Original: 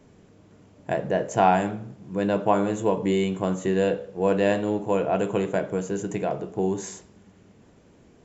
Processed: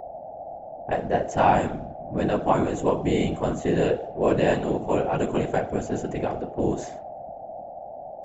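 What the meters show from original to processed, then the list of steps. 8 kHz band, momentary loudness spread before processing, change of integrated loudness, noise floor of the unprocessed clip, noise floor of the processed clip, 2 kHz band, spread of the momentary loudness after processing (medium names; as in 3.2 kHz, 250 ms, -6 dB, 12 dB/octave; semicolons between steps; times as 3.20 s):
no reading, 10 LU, 0.0 dB, -55 dBFS, -40 dBFS, 0.0 dB, 17 LU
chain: level-controlled noise filter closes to 690 Hz, open at -21 dBFS; whistle 680 Hz -35 dBFS; whisper effect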